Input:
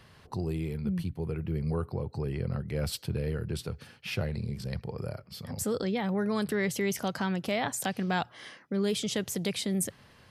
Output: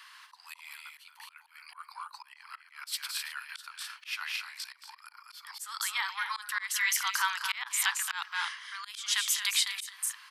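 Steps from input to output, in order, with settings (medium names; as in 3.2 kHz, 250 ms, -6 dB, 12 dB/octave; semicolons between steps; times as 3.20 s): steep high-pass 960 Hz 72 dB/octave; loudspeakers at several distances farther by 76 m -9 dB, 88 m -11 dB; slow attack 200 ms; trim +8 dB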